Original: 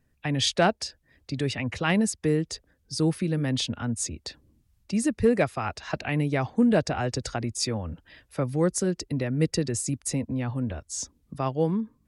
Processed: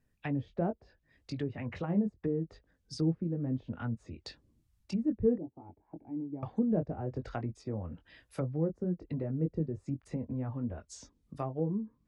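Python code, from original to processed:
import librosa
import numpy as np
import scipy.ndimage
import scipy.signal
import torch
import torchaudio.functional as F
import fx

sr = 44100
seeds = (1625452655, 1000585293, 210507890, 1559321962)

y = fx.chorus_voices(x, sr, voices=4, hz=0.68, base_ms=21, depth_ms=3.4, mix_pct=30)
y = fx.formant_cascade(y, sr, vowel='u', at=(5.38, 6.43))
y = fx.env_lowpass_down(y, sr, base_hz=510.0, full_db=-25.5)
y = F.gain(torch.from_numpy(y), -4.0).numpy()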